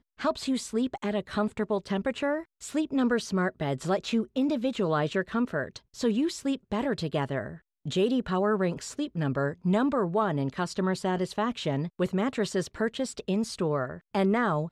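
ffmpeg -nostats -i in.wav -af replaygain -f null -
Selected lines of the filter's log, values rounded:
track_gain = +9.3 dB
track_peak = 0.131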